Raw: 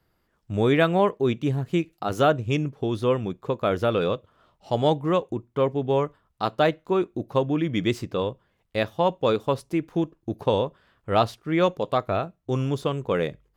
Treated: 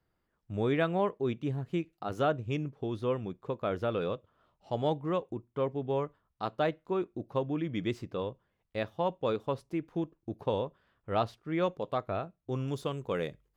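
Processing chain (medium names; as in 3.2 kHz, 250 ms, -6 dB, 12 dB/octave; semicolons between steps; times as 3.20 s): treble shelf 4.8 kHz -8.5 dB, from 12.68 s +4 dB; trim -8.5 dB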